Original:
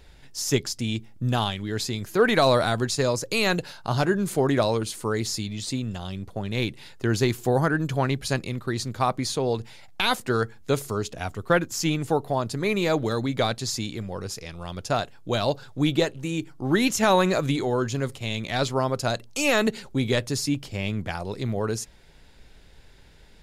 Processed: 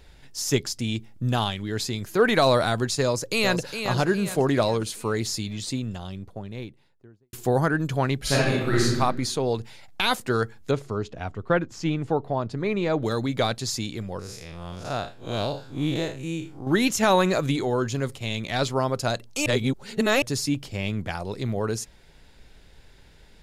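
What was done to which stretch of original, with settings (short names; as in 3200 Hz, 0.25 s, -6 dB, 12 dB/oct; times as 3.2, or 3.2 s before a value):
3.02–3.84 echo throw 0.41 s, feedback 45%, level -7.5 dB
5.58–7.33 studio fade out
8.2–8.95 reverb throw, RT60 1 s, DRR -6.5 dB
10.71–13.03 tape spacing loss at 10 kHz 20 dB
14.19–16.67 time blur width 0.126 s
19.46–20.22 reverse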